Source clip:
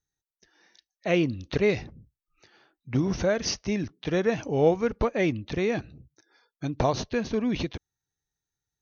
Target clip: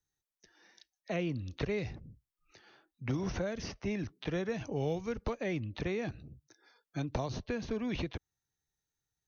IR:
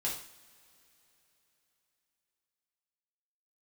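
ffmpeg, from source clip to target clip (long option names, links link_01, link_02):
-filter_complex "[0:a]acrossover=split=140|390|2800[link_01][link_02][link_03][link_04];[link_01]acompressor=threshold=-34dB:ratio=4[link_05];[link_02]acompressor=threshold=-40dB:ratio=4[link_06];[link_03]acompressor=threshold=-37dB:ratio=4[link_07];[link_04]acompressor=threshold=-50dB:ratio=4[link_08];[link_05][link_06][link_07][link_08]amix=inputs=4:normalize=0,atempo=0.95,volume=-1.5dB"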